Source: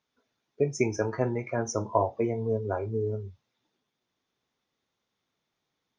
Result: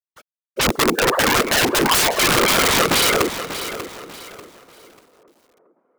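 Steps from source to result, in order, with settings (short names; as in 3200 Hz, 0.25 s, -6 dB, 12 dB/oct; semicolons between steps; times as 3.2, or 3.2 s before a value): sine-wave speech; high shelf 2800 Hz -7.5 dB; in parallel at -0.5 dB: limiter -23.5 dBFS, peak gain reduction 11.5 dB; 0.73–1.26 on the sum: compressor 3:1, threshold -31 dBFS, peak gain reduction 12 dB; LFO low-pass saw down 0.56 Hz 720–1900 Hz; bit-crush 11-bit; sine folder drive 19 dB, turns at -11 dBFS; whisperiser; wrapped overs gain 8 dB; tape echo 0.408 s, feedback 67%, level -16 dB, low-pass 1800 Hz; lo-fi delay 0.591 s, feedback 35%, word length 7-bit, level -11.5 dB; gain -2 dB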